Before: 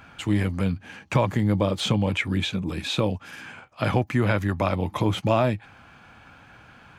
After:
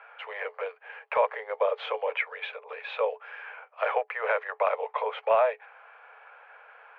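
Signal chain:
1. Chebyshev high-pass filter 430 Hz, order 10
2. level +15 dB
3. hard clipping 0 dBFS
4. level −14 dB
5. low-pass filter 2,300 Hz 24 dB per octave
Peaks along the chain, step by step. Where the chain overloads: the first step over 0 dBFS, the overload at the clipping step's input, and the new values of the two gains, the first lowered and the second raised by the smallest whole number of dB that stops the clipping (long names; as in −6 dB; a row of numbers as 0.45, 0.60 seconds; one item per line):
−12.0, +3.0, 0.0, −14.0, −13.5 dBFS
step 2, 3.0 dB
step 2 +12 dB, step 4 −11 dB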